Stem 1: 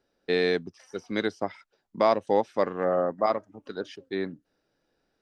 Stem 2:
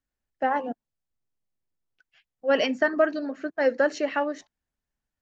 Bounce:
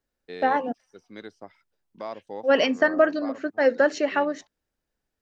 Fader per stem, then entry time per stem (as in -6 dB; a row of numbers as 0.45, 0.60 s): -13.5, +2.5 dB; 0.00, 0.00 s